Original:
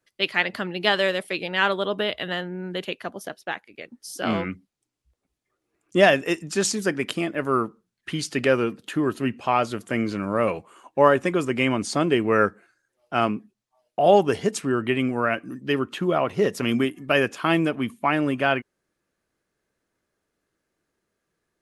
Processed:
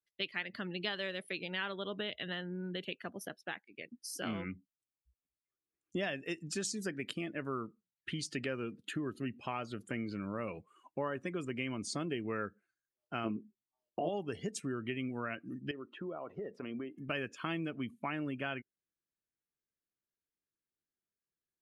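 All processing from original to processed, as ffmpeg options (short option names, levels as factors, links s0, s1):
-filter_complex "[0:a]asettb=1/sr,asplit=3[s0][s1][s2];[s0]atrim=end=13.244[s3];[s1]atrim=start=13.24:end=14.09,asetpts=PTS-STARTPTS,afade=t=in:d=0.004:c=qsin,afade=t=out:st=0.846:d=0.004:c=qsin,equalizer=f=350:t=o:w=1.2:g=9.5,asplit=2[s4][s5];[s5]adelay=18,volume=0.708[s6];[s4][s6]amix=inputs=2:normalize=0,atrim=end_sample=37485[s7];[s2]atrim=start=14.086[s8];[s3][s7]acrossfade=d=0.004:c1=hsin:c2=qsin[s9];[s9][s8]acrossfade=d=0.004:c1=qsin:c2=hsin,asettb=1/sr,asplit=3[s10][s11][s12];[s10]atrim=end=15.714[s13];[s11]atrim=start=15.71:end=16.98,asetpts=PTS-STARTPTS,afade=t=in:d=0.004:c=qsin,afade=t=out:st=1.266:d=0.004:c=qsin,bandpass=f=660:t=q:w=0.85,acompressor=threshold=0.0316:ratio=3:attack=3.2:release=140:knee=1:detection=peak[s14];[s12]atrim=start=16.976[s15];[s13][s14]acrossfade=d=0.004:c1=hsin:c2=qsin[s16];[s16][s15]acrossfade=d=0.004:c1=qsin:c2=hsin,equalizer=f=730:w=0.67:g=-7,acompressor=threshold=0.0251:ratio=3,afftdn=nr=16:nf=-47,volume=0.596"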